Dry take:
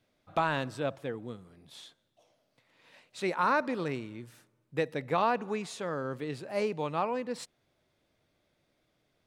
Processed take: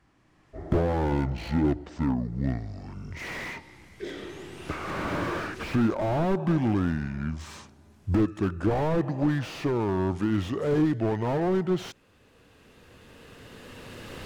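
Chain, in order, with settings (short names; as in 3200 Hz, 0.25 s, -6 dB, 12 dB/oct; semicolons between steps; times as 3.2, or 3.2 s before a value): speed glide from 50% -> 80%; recorder AGC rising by 10 dB/s; slew limiter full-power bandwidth 13 Hz; gain +8.5 dB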